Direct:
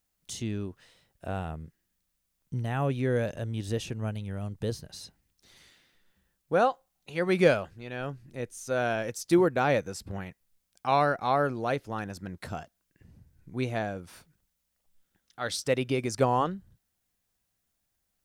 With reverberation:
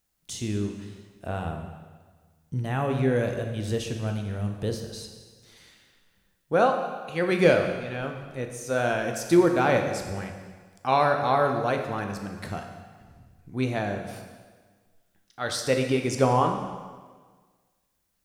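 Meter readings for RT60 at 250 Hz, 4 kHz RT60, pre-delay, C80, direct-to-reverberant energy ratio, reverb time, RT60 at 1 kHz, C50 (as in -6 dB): 1.6 s, 1.4 s, 6 ms, 7.5 dB, 3.5 dB, 1.5 s, 1.5 s, 6.0 dB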